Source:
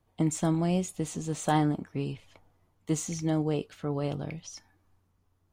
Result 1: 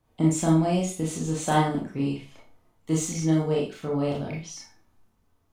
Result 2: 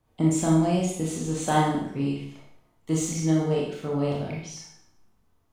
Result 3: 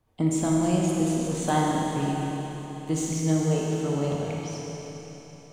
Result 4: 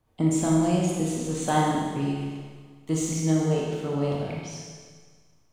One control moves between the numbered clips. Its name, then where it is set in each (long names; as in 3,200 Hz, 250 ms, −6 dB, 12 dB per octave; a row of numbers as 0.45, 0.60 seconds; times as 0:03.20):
four-comb reverb, RT60: 0.32, 0.66, 4, 1.6 seconds